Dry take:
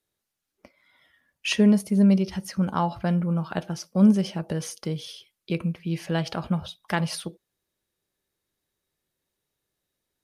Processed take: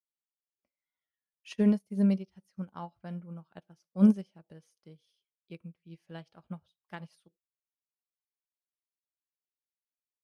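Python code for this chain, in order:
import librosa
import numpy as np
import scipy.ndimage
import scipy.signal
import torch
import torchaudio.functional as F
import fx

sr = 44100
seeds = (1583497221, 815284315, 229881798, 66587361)

y = fx.upward_expand(x, sr, threshold_db=-34.0, expansion=2.5)
y = y * librosa.db_to_amplitude(-2.5)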